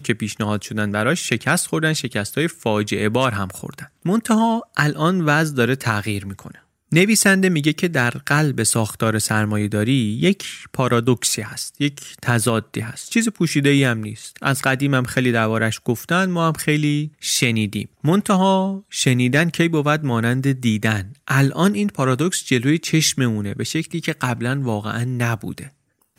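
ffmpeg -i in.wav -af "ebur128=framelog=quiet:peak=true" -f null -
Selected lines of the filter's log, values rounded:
Integrated loudness:
  I:         -19.4 LUFS
  Threshold: -29.6 LUFS
Loudness range:
  LRA:         2.6 LU
  Threshold: -39.3 LUFS
  LRA low:   -20.7 LUFS
  LRA high:  -18.1 LUFS
True peak:
  Peak:       -2.5 dBFS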